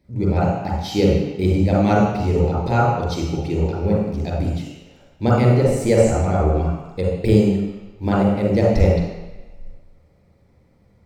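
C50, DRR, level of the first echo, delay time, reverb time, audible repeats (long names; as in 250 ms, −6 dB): −2.0 dB, −5.5 dB, no echo audible, no echo audible, 1.1 s, no echo audible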